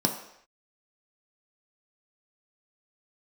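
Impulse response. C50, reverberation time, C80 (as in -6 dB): 8.0 dB, no single decay rate, 10.5 dB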